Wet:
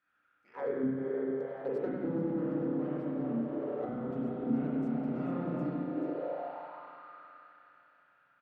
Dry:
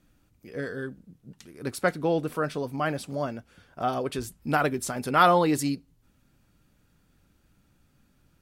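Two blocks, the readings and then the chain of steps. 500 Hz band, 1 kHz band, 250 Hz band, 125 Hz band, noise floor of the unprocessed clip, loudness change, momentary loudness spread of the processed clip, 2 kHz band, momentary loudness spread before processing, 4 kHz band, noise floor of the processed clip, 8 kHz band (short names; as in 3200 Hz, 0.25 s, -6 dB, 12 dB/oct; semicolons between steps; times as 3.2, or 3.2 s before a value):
-6.0 dB, -17.0 dB, -1.0 dB, -6.0 dB, -66 dBFS, -7.5 dB, 14 LU, -18.5 dB, 16 LU, under -25 dB, -72 dBFS, under -40 dB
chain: LPF 3700 Hz 6 dB/oct; high shelf 2600 Hz +9 dB; compressor 6:1, threshold -29 dBFS, peak gain reduction 15 dB; added harmonics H 4 -10 dB, 7 -27 dB, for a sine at -19 dBFS; on a send: echo 0.435 s -8.5 dB; on the sum: spring tank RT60 3.8 s, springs 30/34/52 ms, chirp 70 ms, DRR -10 dB; auto-wah 230–1500 Hz, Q 3.7, down, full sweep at -19.5 dBFS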